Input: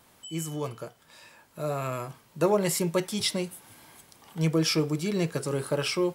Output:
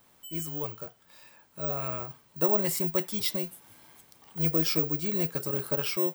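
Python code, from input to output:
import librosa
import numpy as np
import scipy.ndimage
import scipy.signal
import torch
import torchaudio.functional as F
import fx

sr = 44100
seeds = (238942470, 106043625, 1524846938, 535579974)

y = (np.kron(scipy.signal.resample_poly(x, 1, 2), np.eye(2)[0]) * 2)[:len(x)]
y = F.gain(torch.from_numpy(y), -4.5).numpy()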